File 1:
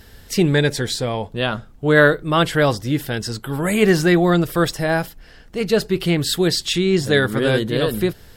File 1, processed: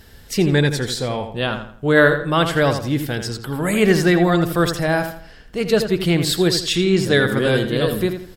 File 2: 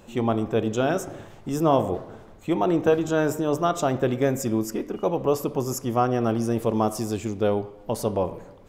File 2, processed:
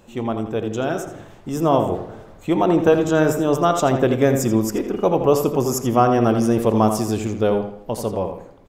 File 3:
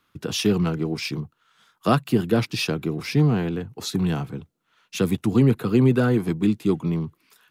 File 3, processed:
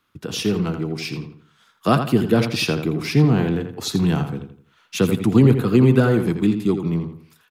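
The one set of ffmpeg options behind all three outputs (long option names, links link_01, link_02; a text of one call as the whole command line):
ffmpeg -i in.wav -filter_complex "[0:a]dynaudnorm=framelen=490:gausssize=7:maxgain=8.5dB,asplit=2[link_01][link_02];[link_02]adelay=83,lowpass=frequency=4100:poles=1,volume=-8dB,asplit=2[link_03][link_04];[link_04]adelay=83,lowpass=frequency=4100:poles=1,volume=0.35,asplit=2[link_05][link_06];[link_06]adelay=83,lowpass=frequency=4100:poles=1,volume=0.35,asplit=2[link_07][link_08];[link_08]adelay=83,lowpass=frequency=4100:poles=1,volume=0.35[link_09];[link_03][link_05][link_07][link_09]amix=inputs=4:normalize=0[link_10];[link_01][link_10]amix=inputs=2:normalize=0,volume=-1dB" out.wav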